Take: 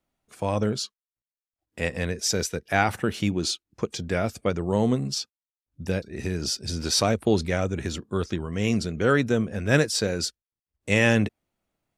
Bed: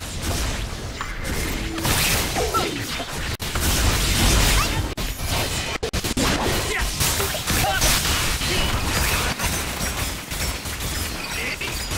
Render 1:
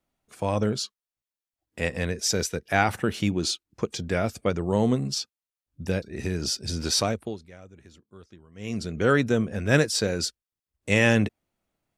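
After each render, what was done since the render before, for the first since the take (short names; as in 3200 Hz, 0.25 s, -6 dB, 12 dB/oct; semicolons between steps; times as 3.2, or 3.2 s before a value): 6.91–9.02 dip -21.5 dB, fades 0.48 s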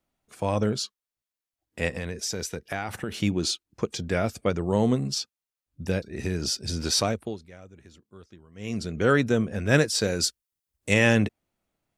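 1.97–3.12 compressor 4:1, threshold -27 dBFS; 10.01–10.94 high shelf 5700 Hz +7.5 dB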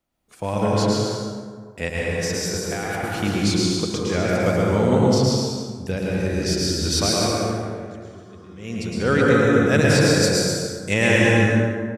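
on a send: bouncing-ball echo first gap 0.11 s, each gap 0.75×, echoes 5; on the sum: plate-style reverb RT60 1.8 s, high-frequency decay 0.45×, pre-delay 0.115 s, DRR -3 dB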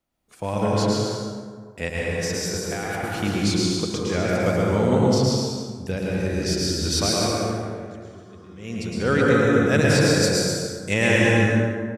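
gain -1.5 dB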